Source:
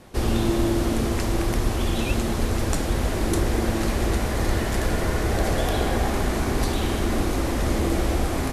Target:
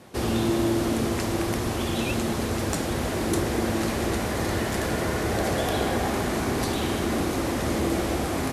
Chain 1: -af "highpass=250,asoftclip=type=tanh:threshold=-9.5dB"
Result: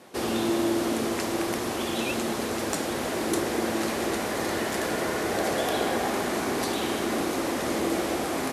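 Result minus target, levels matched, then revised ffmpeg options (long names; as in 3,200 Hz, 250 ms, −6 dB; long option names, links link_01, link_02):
125 Hz band −9.5 dB
-af "highpass=98,asoftclip=type=tanh:threshold=-9.5dB"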